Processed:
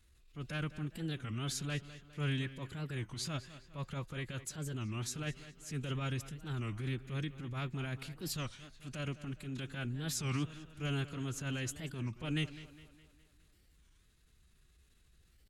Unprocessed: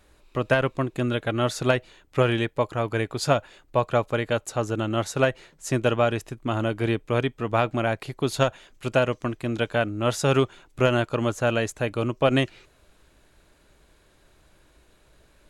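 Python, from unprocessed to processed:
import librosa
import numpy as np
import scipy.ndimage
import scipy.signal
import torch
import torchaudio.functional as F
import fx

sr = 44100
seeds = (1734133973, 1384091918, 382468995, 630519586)

y = fx.pitch_keep_formants(x, sr, semitones=2.5)
y = fx.transient(y, sr, attack_db=-8, sustain_db=4)
y = fx.tone_stack(y, sr, knobs='6-0-2')
y = fx.echo_tape(y, sr, ms=205, feedback_pct=55, wet_db=-13.0, lp_hz=4600.0, drive_db=35.0, wow_cents=11)
y = fx.record_warp(y, sr, rpm=33.33, depth_cents=250.0)
y = F.gain(torch.from_numpy(y), 6.5).numpy()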